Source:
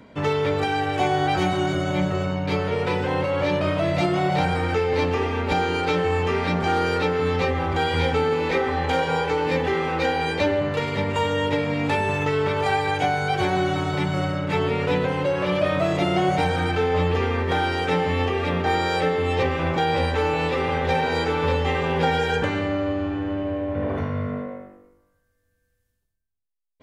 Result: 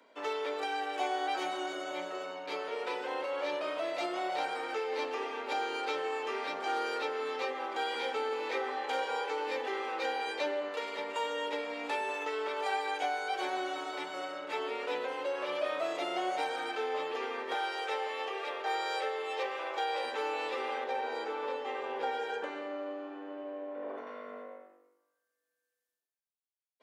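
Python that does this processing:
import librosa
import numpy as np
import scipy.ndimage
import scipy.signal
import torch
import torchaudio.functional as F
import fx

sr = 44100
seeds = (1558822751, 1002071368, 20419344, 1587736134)

y = fx.highpass(x, sr, hz=380.0, slope=24, at=(17.54, 20.04))
y = fx.high_shelf(y, sr, hz=2000.0, db=-9.0, at=(20.84, 24.07))
y = scipy.signal.sosfilt(scipy.signal.bessel(8, 510.0, 'highpass', norm='mag', fs=sr, output='sos'), y)
y = fx.peak_eq(y, sr, hz=2000.0, db=-2.5, octaves=0.77)
y = y * 10.0 ** (-8.5 / 20.0)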